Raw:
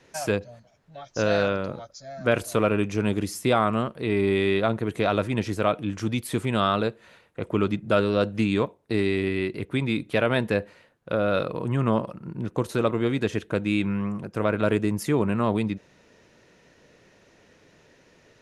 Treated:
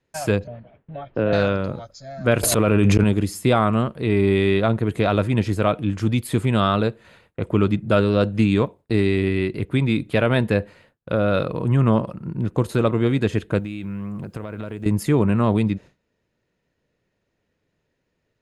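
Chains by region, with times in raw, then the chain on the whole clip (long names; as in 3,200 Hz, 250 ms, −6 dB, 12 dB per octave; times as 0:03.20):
0:00.47–0:01.33: Butterworth low-pass 3,100 Hz + parametric band 360 Hz +7 dB 1.9 octaves + multiband upward and downward compressor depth 40%
0:02.43–0:03.04: volume swells 275 ms + envelope flattener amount 100%
0:13.59–0:14.86: downward compressor, threshold −32 dBFS + bit-depth reduction 12 bits, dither none
whole clip: notch filter 5,800 Hz, Q 8; noise gate with hold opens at −43 dBFS; low-shelf EQ 170 Hz +9.5 dB; level +2 dB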